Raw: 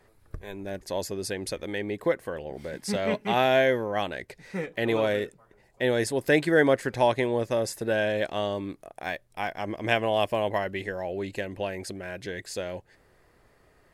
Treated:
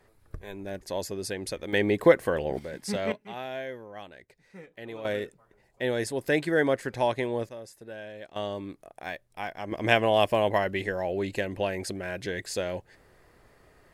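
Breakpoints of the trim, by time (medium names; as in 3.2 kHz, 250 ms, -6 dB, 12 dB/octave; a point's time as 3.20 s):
-1.5 dB
from 1.73 s +7 dB
from 2.59 s -2 dB
from 3.12 s -14.5 dB
from 5.05 s -3.5 dB
from 7.49 s -15.5 dB
from 8.36 s -4 dB
from 9.72 s +2.5 dB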